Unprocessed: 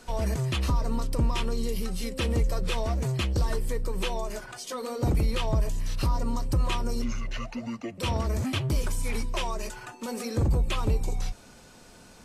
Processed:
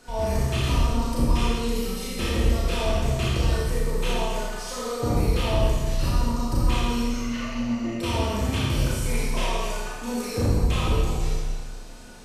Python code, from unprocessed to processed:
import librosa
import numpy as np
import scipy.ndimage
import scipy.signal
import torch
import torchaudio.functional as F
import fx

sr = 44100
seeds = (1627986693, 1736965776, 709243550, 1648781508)

y = fx.rev_schroeder(x, sr, rt60_s=1.6, comb_ms=26, drr_db=-7.0)
y = y * librosa.db_to_amplitude(-3.0)